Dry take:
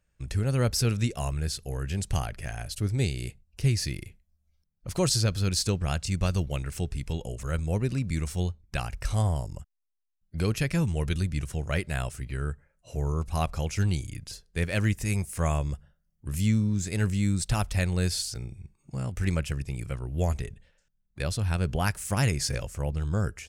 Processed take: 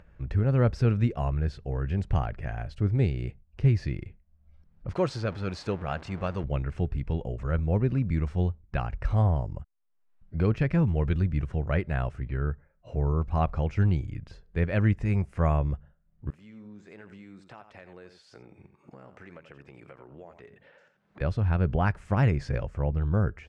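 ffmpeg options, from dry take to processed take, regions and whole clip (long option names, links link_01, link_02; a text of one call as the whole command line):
ffmpeg -i in.wav -filter_complex "[0:a]asettb=1/sr,asplit=3[link_01][link_02][link_03];[link_01]atrim=end=4.944[link_04];[link_02]atrim=start=4.94:end=6.44,asetpts=PTS-STARTPTS,afade=type=in:duration=0.004:curve=qsin,afade=type=out:start_time=1.496:duration=0.004:curve=qsin,aeval=exprs='val(0)+0.5*0.02*sgn(val(0))':channel_layout=same,highpass=frequency=370:poles=1[link_05];[link_03]atrim=start=6.436[link_06];[link_04][link_05]acrossfade=duration=0.004:curve1=hsin:curve2=qsin[link_07];[link_07][link_06]acrossfade=duration=0.004:curve1=qsin:curve2=hsin,asettb=1/sr,asplit=3[link_08][link_09][link_10];[link_08]atrim=end=16.304[link_11];[link_09]atrim=start=16.3:end=21.21,asetpts=PTS-STARTPTS,afade=type=in:duration=0.004:curve=qsin,afade=type=out:start_time=4.906:duration=0.004:curve=qsin,highpass=370,acompressor=threshold=-55dB:ratio=2.5:attack=3.2:release=140:knee=1:detection=peak,aecho=1:1:86:0.282,atrim=end_sample=216531[link_12];[link_10]atrim=start=21.206[link_13];[link_11][link_12]acrossfade=duration=0.004:curve1=hsin:curve2=qsin[link_14];[link_14][link_13]acrossfade=duration=0.004:curve1=qsin:curve2=hsin,lowpass=1600,acompressor=mode=upward:threshold=-43dB:ratio=2.5,volume=2.5dB" out.wav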